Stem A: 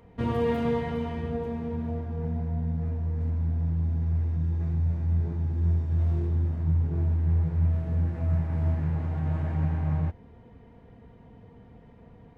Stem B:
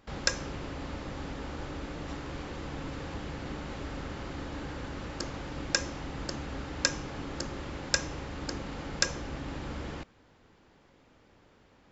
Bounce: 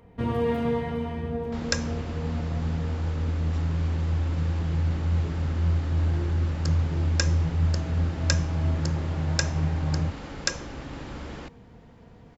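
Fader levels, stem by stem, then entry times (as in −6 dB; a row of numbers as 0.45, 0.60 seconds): +0.5, +0.5 decibels; 0.00, 1.45 seconds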